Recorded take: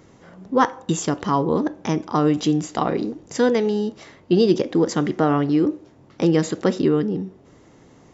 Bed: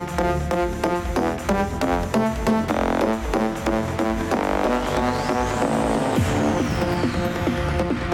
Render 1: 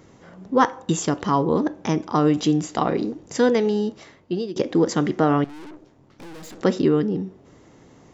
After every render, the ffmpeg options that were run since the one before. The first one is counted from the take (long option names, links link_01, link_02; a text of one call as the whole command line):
ffmpeg -i in.wav -filter_complex "[0:a]asettb=1/sr,asplit=3[link_01][link_02][link_03];[link_01]atrim=end=5.444[link_04];[link_02]atrim=start=5.44:end=6.61,asetpts=PTS-STARTPTS,afade=type=in:duration=0.004:curve=qsin,afade=type=out:start_time=1.166:duration=0.004:curve=qsin,aeval=exprs='(tanh(89.1*val(0)+0.75)-tanh(0.75))/89.1':channel_layout=same[link_05];[link_03]atrim=start=6.606[link_06];[link_04][link_05]acrossfade=duration=0.004:curve1=hsin:curve2=qsin[link_07];[link_07][link_06]acrossfade=duration=0.004:curve1=qsin:curve2=hsin,asplit=2[link_08][link_09];[link_08]atrim=end=4.56,asetpts=PTS-STARTPTS,afade=type=out:start_time=3.88:duration=0.68:silence=0.1[link_10];[link_09]atrim=start=4.56,asetpts=PTS-STARTPTS,afade=type=in:duration=0.004:curve=hsin:silence=0.1[link_11];[link_10][link_11]concat=n=2:v=0:a=1" out.wav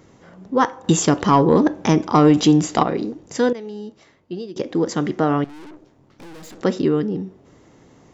ffmpeg -i in.wav -filter_complex "[0:a]asettb=1/sr,asplit=3[link_01][link_02][link_03];[link_01]atrim=end=0.844[link_04];[link_02]atrim=start=0.84:end=2.83,asetpts=PTS-STARTPTS,afade=type=in:duration=0.004:curve=qsin,afade=type=out:start_time=1.986:duration=0.004:curve=qsin,acontrast=72[link_05];[link_03]atrim=start=2.826[link_06];[link_04][link_05]acrossfade=duration=0.004:curve1=hsin:curve2=qsin[link_07];[link_07][link_06]acrossfade=duration=0.004:curve1=qsin:curve2=hsin,asplit=2[link_08][link_09];[link_08]atrim=end=3.53,asetpts=PTS-STARTPTS,afade=type=out:start_time=3.526:duration=0.004:curve=hsin:silence=0.188365[link_10];[link_09]atrim=start=3.53,asetpts=PTS-STARTPTS,afade=type=in:duration=1.57:silence=0.188365[link_11];[link_10][link_11]concat=n=2:v=0:a=1" out.wav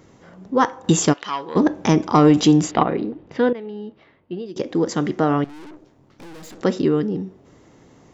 ffmpeg -i in.wav -filter_complex "[0:a]asplit=3[link_01][link_02][link_03];[link_01]afade=type=out:start_time=1.12:duration=0.02[link_04];[link_02]bandpass=frequency=2800:width_type=q:width=1.2,afade=type=in:start_time=1.12:duration=0.02,afade=type=out:start_time=1.55:duration=0.02[link_05];[link_03]afade=type=in:start_time=1.55:duration=0.02[link_06];[link_04][link_05][link_06]amix=inputs=3:normalize=0,asettb=1/sr,asplit=3[link_07][link_08][link_09];[link_07]atrim=end=2.714[link_10];[link_08]atrim=start=2.71:end=4.46,asetpts=PTS-STARTPTS,afade=type=in:duration=0.004:curve=qsin,afade=type=out:start_time=1.746:duration=0.004:curve=qsin,lowpass=frequency=3400:width=0.5412,lowpass=frequency=3400:width=1.3066[link_11];[link_09]atrim=start=4.456[link_12];[link_10][link_11]acrossfade=duration=0.004:curve1=hsin:curve2=qsin[link_13];[link_13][link_12]acrossfade=duration=0.004:curve1=qsin:curve2=hsin" out.wav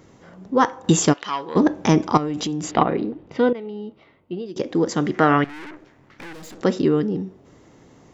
ffmpeg -i in.wav -filter_complex "[0:a]asettb=1/sr,asplit=3[link_01][link_02][link_03];[link_01]atrim=end=2.174[link_04];[link_02]atrim=start=2.17:end=2.74,asetpts=PTS-STARTPTS,afade=type=in:duration=0.004:curve=qsin,afade=type=out:start_time=0.566:duration=0.004:curve=qsin,acompressor=threshold=-23dB:ratio=6:attack=3.2:release=140:knee=1:detection=peak[link_05];[link_03]atrim=start=2.736[link_06];[link_04][link_05]acrossfade=duration=0.004:curve1=hsin:curve2=qsin[link_07];[link_07][link_06]acrossfade=duration=0.004:curve1=qsin:curve2=hsin,asettb=1/sr,asplit=3[link_08][link_09][link_10];[link_08]atrim=end=3.284[link_11];[link_09]atrim=start=3.28:end=4.41,asetpts=PTS-STARTPTS,afade=type=in:duration=0.004:curve=qsin,afade=type=out:start_time=1.126:duration=0.004:curve=qsin,asuperstop=centerf=1700:order=4:qfactor=7.5[link_12];[link_10]atrim=start=4.406[link_13];[link_11][link_12]acrossfade=duration=0.004:curve1=hsin:curve2=qsin[link_14];[link_14][link_13]acrossfade=duration=0.004:curve1=qsin:curve2=hsin,asettb=1/sr,asplit=3[link_15][link_16][link_17];[link_15]atrim=end=5.144[link_18];[link_16]atrim=start=5.14:end=6.33,asetpts=PTS-STARTPTS,afade=type=in:duration=0.004:curve=qsin,afade=type=out:start_time=1.186:duration=0.004:curve=qsin,equalizer=frequency=1900:width=1:gain=12.5[link_19];[link_17]atrim=start=6.326[link_20];[link_18][link_19]acrossfade=duration=0.004:curve1=hsin:curve2=qsin[link_21];[link_21][link_20]acrossfade=duration=0.004:curve1=qsin:curve2=hsin" out.wav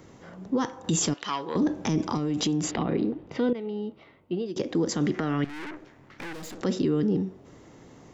ffmpeg -i in.wav -filter_complex "[0:a]acrossover=split=350|3000[link_01][link_02][link_03];[link_02]acompressor=threshold=-28dB:ratio=3[link_04];[link_01][link_04][link_03]amix=inputs=3:normalize=0,alimiter=limit=-17dB:level=0:latency=1:release=12" out.wav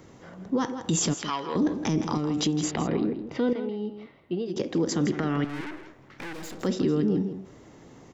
ffmpeg -i in.wav -filter_complex "[0:a]asplit=2[link_01][link_02];[link_02]adelay=163.3,volume=-10dB,highshelf=frequency=4000:gain=-3.67[link_03];[link_01][link_03]amix=inputs=2:normalize=0" out.wav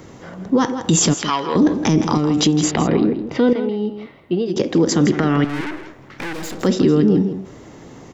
ffmpeg -i in.wav -af "volume=10dB" out.wav